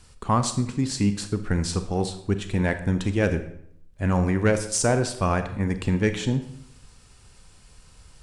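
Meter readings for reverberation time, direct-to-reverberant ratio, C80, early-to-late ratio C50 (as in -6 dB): 0.70 s, 9.0 dB, 13.5 dB, 11.0 dB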